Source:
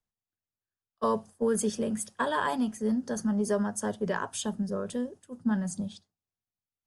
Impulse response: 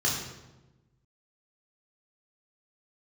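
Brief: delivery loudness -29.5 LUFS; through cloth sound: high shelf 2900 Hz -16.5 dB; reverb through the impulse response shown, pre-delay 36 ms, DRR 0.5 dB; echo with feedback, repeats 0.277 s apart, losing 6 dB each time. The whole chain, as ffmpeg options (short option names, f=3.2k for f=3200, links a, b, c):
-filter_complex "[0:a]aecho=1:1:277|554|831|1108|1385|1662:0.501|0.251|0.125|0.0626|0.0313|0.0157,asplit=2[a][b];[1:a]atrim=start_sample=2205,adelay=36[c];[b][c]afir=irnorm=-1:irlink=0,volume=-11dB[d];[a][d]amix=inputs=2:normalize=0,highshelf=f=2.9k:g=-16.5,volume=-3dB"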